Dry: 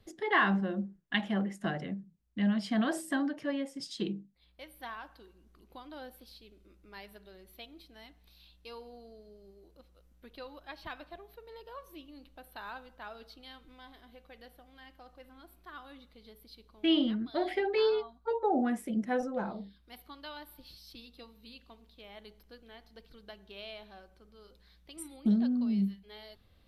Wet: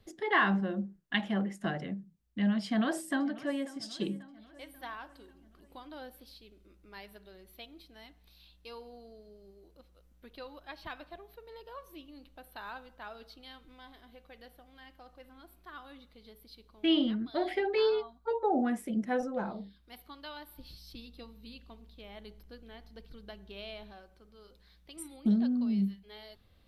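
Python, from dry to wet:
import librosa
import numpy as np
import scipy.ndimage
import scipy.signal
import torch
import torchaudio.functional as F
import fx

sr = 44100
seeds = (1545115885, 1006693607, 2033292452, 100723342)

y = fx.echo_throw(x, sr, start_s=2.66, length_s=1.02, ms=540, feedback_pct=55, wet_db=-18.0)
y = fx.low_shelf(y, sr, hz=260.0, db=8.5, at=(20.56, 23.93))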